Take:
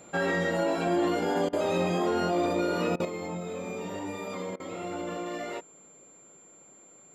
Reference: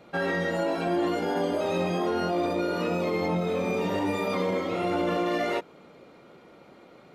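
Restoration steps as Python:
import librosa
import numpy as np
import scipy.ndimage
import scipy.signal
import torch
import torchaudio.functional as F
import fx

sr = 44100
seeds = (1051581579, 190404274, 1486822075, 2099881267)

y = fx.notch(x, sr, hz=7300.0, q=30.0)
y = fx.fix_interpolate(y, sr, at_s=(1.49, 2.96, 4.56), length_ms=38.0)
y = fx.fix_level(y, sr, at_s=3.05, step_db=8.5)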